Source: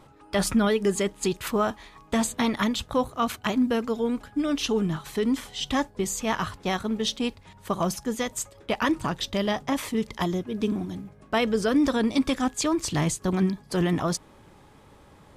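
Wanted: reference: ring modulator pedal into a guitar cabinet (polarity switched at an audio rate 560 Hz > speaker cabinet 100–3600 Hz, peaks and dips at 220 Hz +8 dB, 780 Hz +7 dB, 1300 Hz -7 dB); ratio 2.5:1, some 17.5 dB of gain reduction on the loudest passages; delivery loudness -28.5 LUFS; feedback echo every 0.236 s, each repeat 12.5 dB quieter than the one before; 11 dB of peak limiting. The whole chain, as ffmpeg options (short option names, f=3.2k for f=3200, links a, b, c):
-af "acompressor=threshold=-46dB:ratio=2.5,alimiter=level_in=13dB:limit=-24dB:level=0:latency=1,volume=-13dB,aecho=1:1:236|472|708:0.237|0.0569|0.0137,aeval=exprs='val(0)*sgn(sin(2*PI*560*n/s))':c=same,highpass=100,equalizer=f=220:t=q:w=4:g=8,equalizer=f=780:t=q:w=4:g=7,equalizer=f=1.3k:t=q:w=4:g=-7,lowpass=f=3.6k:w=0.5412,lowpass=f=3.6k:w=1.3066,volume=16dB"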